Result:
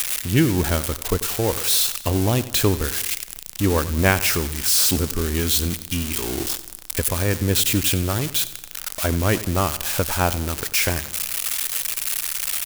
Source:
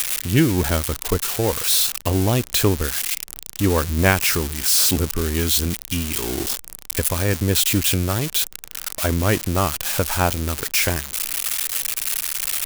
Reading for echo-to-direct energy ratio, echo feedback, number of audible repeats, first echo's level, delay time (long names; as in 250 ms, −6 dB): −14.5 dB, 52%, 4, −16.0 dB, 92 ms